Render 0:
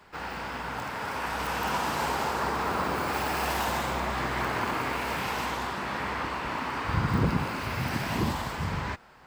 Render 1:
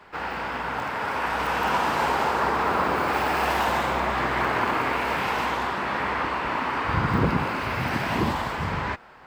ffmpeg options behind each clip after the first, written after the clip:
-af "bass=f=250:g=-5,treble=f=4000:g=-9,volume=2"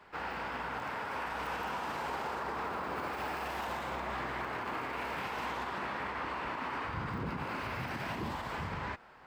-af "alimiter=limit=0.0891:level=0:latency=1:release=86,volume=0.422"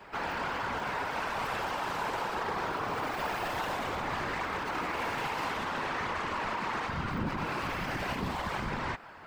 -af "aeval=exprs='0.0398*(cos(1*acos(clip(val(0)/0.0398,-1,1)))-cos(1*PI/2))+0.00562*(cos(5*acos(clip(val(0)/0.0398,-1,1)))-cos(5*PI/2))':c=same,afftfilt=real='hypot(re,im)*cos(2*PI*random(0))':imag='hypot(re,im)*sin(2*PI*random(1))':win_size=512:overlap=0.75,volume=2.66"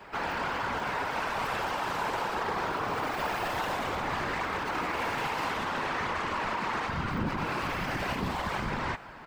-af "aecho=1:1:430:0.0891,volume=1.26"

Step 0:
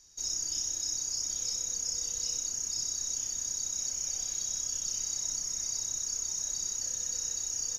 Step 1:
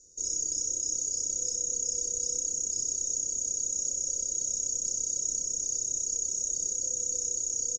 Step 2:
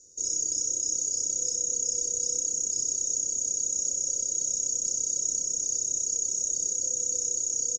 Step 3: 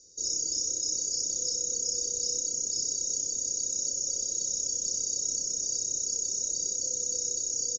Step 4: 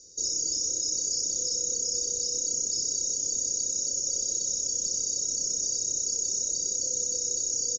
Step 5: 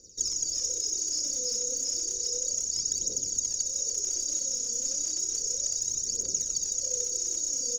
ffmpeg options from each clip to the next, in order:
-af "firequalizer=gain_entry='entry(110,0);entry(520,12);entry(770,-20);entry(2400,-26);entry(7300,8);entry(12000,-18)':delay=0.05:min_phase=1"
-af "lowshelf=f=62:g=-10,volume=1.33"
-af "lowpass=f=4600:t=q:w=3.2"
-af "alimiter=level_in=1.06:limit=0.0631:level=0:latency=1:release=38,volume=0.944,volume=1.68"
-af "aphaser=in_gain=1:out_gain=1:delay=4.3:decay=0.63:speed=0.32:type=triangular,volume=0.668"

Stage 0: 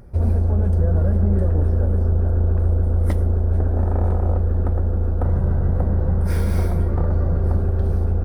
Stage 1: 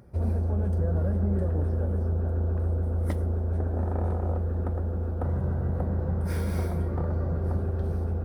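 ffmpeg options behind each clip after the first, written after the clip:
-af "highpass=78,volume=0.531"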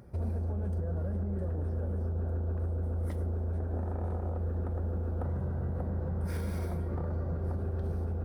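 -af "alimiter=level_in=1.26:limit=0.0631:level=0:latency=1:release=145,volume=0.794"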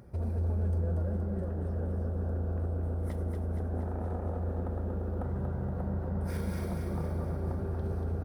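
-af "aecho=1:1:235|470|705|940|1175|1410|1645|1880:0.562|0.337|0.202|0.121|0.0729|0.0437|0.0262|0.0157"

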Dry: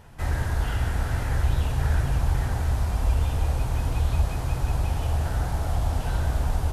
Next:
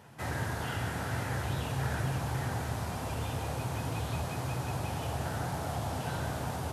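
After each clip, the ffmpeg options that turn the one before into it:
-af "highpass=f=110:w=0.5412,highpass=f=110:w=1.3066,volume=0.794"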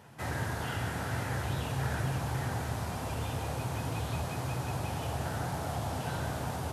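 -af anull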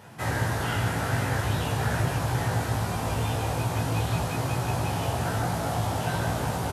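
-filter_complex "[0:a]asplit=2[s0][s1];[s1]adelay=18,volume=0.708[s2];[s0][s2]amix=inputs=2:normalize=0,volume=1.88"

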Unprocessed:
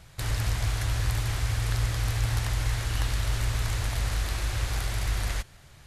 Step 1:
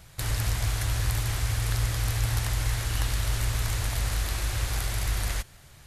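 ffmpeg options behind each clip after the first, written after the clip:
-af "highshelf=f=9600:g=9.5"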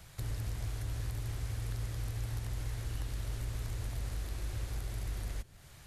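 -filter_complex "[0:a]acrossover=split=240|480[s0][s1][s2];[s0]acompressor=threshold=0.0251:ratio=4[s3];[s1]acompressor=threshold=0.00316:ratio=4[s4];[s2]acompressor=threshold=0.00355:ratio=4[s5];[s3][s4][s5]amix=inputs=3:normalize=0,volume=0.708"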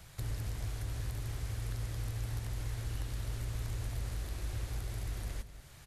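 -af "aecho=1:1:193:0.211"

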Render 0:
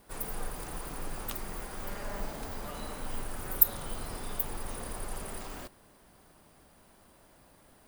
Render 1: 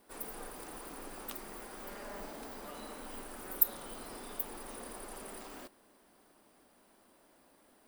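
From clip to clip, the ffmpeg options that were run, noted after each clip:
-af "lowshelf=f=180:t=q:w=1.5:g=-11,bandreject=f=6700:w=21,volume=0.562"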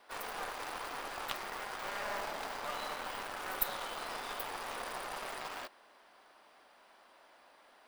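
-filter_complex "[0:a]acrossover=split=590 5200:gain=0.112 1 0.126[s0][s1][s2];[s0][s1][s2]amix=inputs=3:normalize=0,asplit=2[s3][s4];[s4]acrusher=bits=5:dc=4:mix=0:aa=0.000001,volume=0.562[s5];[s3][s5]amix=inputs=2:normalize=0,volume=2.66"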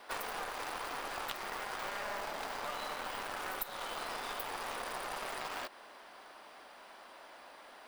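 -af "acompressor=threshold=0.00708:ratio=12,volume=2.51"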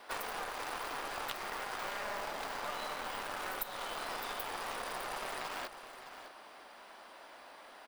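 -af "aecho=1:1:609:0.251"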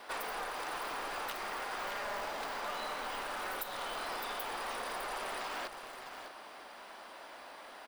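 -af "asoftclip=type=tanh:threshold=0.0178,volume=1.5"

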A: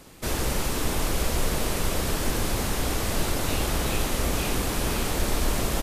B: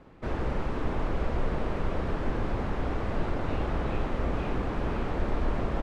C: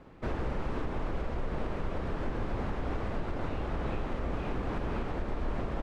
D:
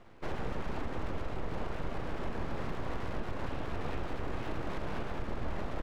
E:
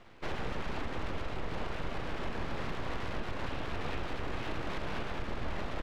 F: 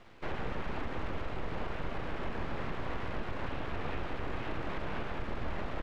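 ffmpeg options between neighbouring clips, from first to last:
-af "lowpass=1600,volume=0.75"
-af "alimiter=limit=0.0668:level=0:latency=1:release=223"
-af "aeval=exprs='abs(val(0))':c=same,volume=0.891"
-af "equalizer=f=3400:t=o:w=2.4:g=7,volume=0.891"
-filter_complex "[0:a]acrossover=split=3000[s0][s1];[s1]acompressor=threshold=0.00112:ratio=4:attack=1:release=60[s2];[s0][s2]amix=inputs=2:normalize=0"

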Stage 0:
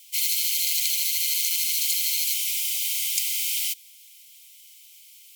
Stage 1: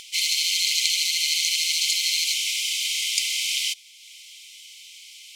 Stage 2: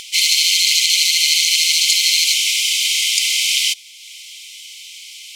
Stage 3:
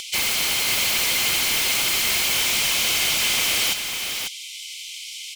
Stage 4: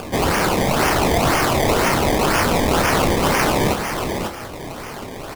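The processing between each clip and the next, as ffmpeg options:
-af "lowpass=5700,acompressor=mode=upward:threshold=0.00562:ratio=2.5,volume=2.37"
-af "alimiter=level_in=2.99:limit=0.891:release=50:level=0:latency=1,volume=0.891"
-filter_complex "[0:a]acrossover=split=760|2200[s0][s1][s2];[s2]aeval=exprs='0.112*(abs(mod(val(0)/0.112+3,4)-2)-1)':c=same[s3];[s0][s1][s3]amix=inputs=3:normalize=0,aecho=1:1:546:0.501"
-filter_complex "[0:a]acrusher=samples=22:mix=1:aa=0.000001:lfo=1:lforange=22:lforate=2,asplit=2[s0][s1];[s1]adelay=29,volume=0.398[s2];[s0][s2]amix=inputs=2:normalize=0,volume=1.5"

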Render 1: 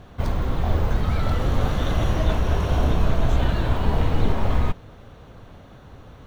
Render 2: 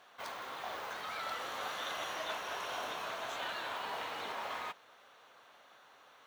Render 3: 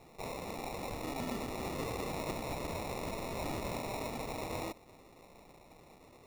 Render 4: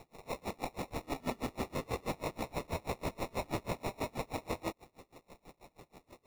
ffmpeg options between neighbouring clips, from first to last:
-af "highpass=960,volume=0.562"
-filter_complex "[0:a]acrossover=split=1000[s0][s1];[s0]alimiter=level_in=8.41:limit=0.0631:level=0:latency=1,volume=0.119[s2];[s2][s1]amix=inputs=2:normalize=0,acrusher=samples=28:mix=1:aa=0.000001,volume=1.41"
-filter_complex "[0:a]acrossover=split=2300[s0][s1];[s1]asoftclip=type=tanh:threshold=0.0119[s2];[s0][s2]amix=inputs=2:normalize=0,aeval=exprs='val(0)*pow(10,-30*(0.5-0.5*cos(2*PI*6.2*n/s))/20)':c=same,volume=2.11"

